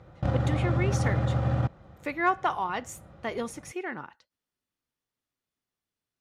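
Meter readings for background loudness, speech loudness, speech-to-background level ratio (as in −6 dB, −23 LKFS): −27.5 LKFS, −32.5 LKFS, −5.0 dB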